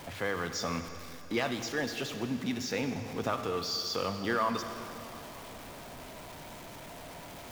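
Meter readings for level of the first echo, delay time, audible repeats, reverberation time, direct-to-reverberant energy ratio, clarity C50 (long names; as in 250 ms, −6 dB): no echo audible, no echo audible, no echo audible, 3.0 s, 7.5 dB, 8.0 dB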